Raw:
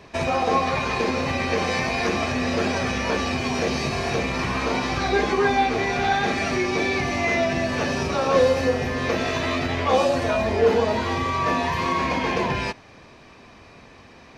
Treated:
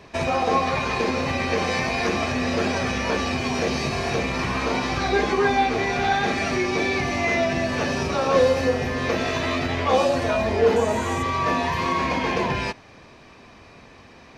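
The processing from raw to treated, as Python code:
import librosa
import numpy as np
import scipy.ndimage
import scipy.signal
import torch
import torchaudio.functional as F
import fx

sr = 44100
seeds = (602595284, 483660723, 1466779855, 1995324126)

y = fx.high_shelf_res(x, sr, hz=6000.0, db=7.5, q=3.0, at=(10.76, 11.23))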